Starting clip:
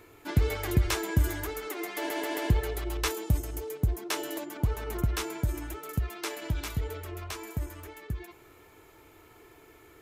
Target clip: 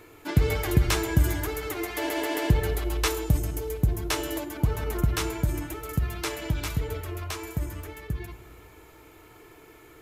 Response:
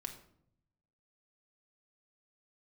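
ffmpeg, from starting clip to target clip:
-filter_complex "[0:a]asplit=2[s0][s1];[1:a]atrim=start_sample=2205,asetrate=28665,aresample=44100[s2];[s1][s2]afir=irnorm=-1:irlink=0,volume=0.631[s3];[s0][s3]amix=inputs=2:normalize=0"

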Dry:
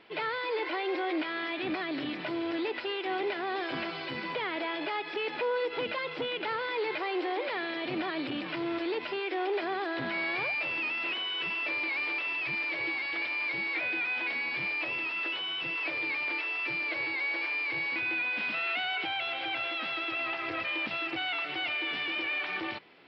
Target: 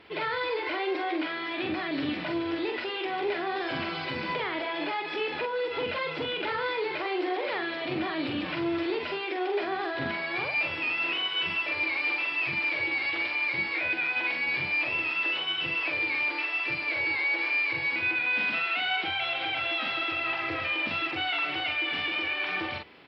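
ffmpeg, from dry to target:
-filter_complex "[0:a]equalizer=f=77:w=2:g=14.5,alimiter=level_in=1.41:limit=0.0631:level=0:latency=1:release=50,volume=0.708,asplit=2[s0][s1];[s1]adelay=44,volume=0.631[s2];[s0][s2]amix=inputs=2:normalize=0,volume=1.41"

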